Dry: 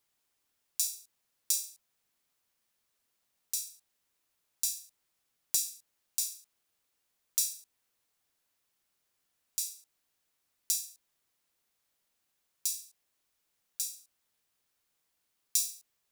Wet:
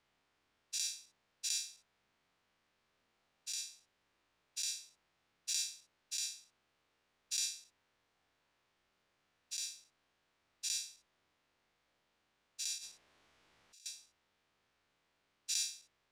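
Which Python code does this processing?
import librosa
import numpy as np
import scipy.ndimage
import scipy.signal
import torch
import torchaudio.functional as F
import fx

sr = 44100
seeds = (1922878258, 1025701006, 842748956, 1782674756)

y = fx.spec_dilate(x, sr, span_ms=120)
y = fx.over_compress(y, sr, threshold_db=-44.0, ratio=-1.0, at=(12.78, 13.86))
y = scipy.signal.sosfilt(scipy.signal.bessel(2, 2600.0, 'lowpass', norm='mag', fs=sr, output='sos'), y)
y = y * 10.0 ** (3.5 / 20.0)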